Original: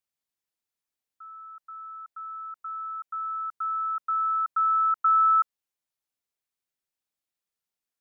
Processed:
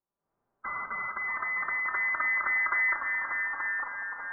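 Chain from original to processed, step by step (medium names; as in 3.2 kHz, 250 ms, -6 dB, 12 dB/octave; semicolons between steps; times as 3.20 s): coarse spectral quantiser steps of 30 dB; formant-preserving pitch shift +7.5 st; hum notches 50/100/150 Hz; level rider gain up to 15.5 dB; low-pass 1.2 kHz 24 dB/octave; on a send: echo that smears into a reverb 566 ms, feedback 48%, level -15 dB; on the sum: simulated room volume 1500 m³, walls mixed, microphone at 1.2 m; time stretch by phase-locked vocoder 0.54×; compression 2.5:1, threshold -42 dBFS, peak gain reduction 14 dB; ever faster or slower copies 546 ms, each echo -2 st, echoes 3, each echo -6 dB; trim +9 dB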